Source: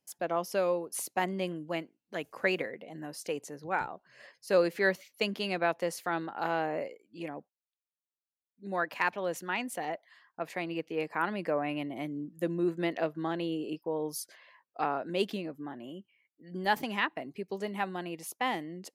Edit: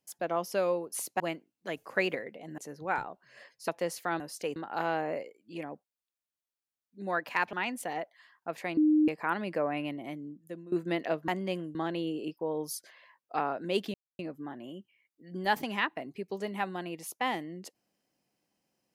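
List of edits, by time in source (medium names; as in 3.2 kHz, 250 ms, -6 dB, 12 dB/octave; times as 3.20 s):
1.20–1.67 s: move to 13.20 s
3.05–3.41 s: move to 6.21 s
4.51–5.69 s: delete
9.18–9.45 s: delete
10.69–11.00 s: bleep 306 Hz -20 dBFS
11.73–12.64 s: fade out, to -18 dB
15.39 s: insert silence 0.25 s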